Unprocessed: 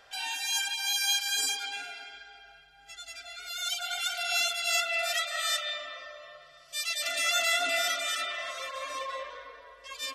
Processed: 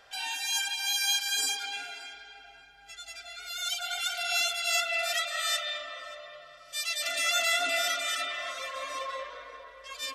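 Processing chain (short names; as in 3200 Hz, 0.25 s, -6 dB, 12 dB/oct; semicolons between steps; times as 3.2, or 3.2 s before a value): darkening echo 0.581 s, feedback 46%, low-pass 2000 Hz, level -13 dB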